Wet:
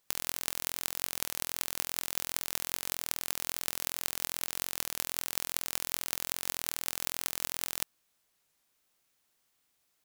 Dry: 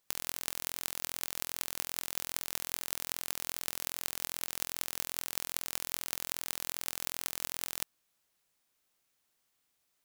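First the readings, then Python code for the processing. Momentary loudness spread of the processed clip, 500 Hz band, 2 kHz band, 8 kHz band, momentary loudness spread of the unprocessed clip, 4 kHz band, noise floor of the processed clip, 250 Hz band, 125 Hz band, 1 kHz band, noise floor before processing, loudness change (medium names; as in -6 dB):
1 LU, +2.5 dB, +2.5 dB, +2.5 dB, 1 LU, +2.5 dB, -76 dBFS, +2.5 dB, +2.5 dB, +2.5 dB, -78 dBFS, +2.5 dB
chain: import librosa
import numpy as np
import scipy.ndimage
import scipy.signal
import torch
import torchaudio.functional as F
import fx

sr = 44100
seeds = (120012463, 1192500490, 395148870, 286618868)

y = fx.record_warp(x, sr, rpm=33.33, depth_cents=100.0)
y = F.gain(torch.from_numpy(y), 2.5).numpy()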